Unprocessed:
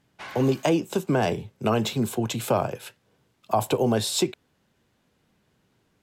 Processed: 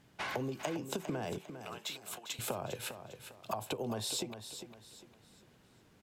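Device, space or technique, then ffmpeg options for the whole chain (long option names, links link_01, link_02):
serial compression, leveller first: -filter_complex "[0:a]acompressor=threshold=-26dB:ratio=6,acompressor=threshold=-38dB:ratio=6,asettb=1/sr,asplit=3[link_01][link_02][link_03];[link_01]atrim=end=1.384[link_04];[link_02]atrim=start=1.38:end=2.39,asetpts=PTS-STARTPTS,afade=type=in:duration=0.004:curve=qsin,afade=type=out:start_time=1.006:duration=0.004:curve=qsin,highpass=1000[link_05];[link_03]atrim=start=2.386[link_06];[link_04][link_05]acrossfade=duration=0.004:curve1=hsin:curve2=qsin[link_07];[link_07][link_06]acrossfade=duration=0.004:curve1=qsin:curve2=hsin,aecho=1:1:402|804|1206|1608:0.316|0.108|0.0366|0.0124,volume=3dB"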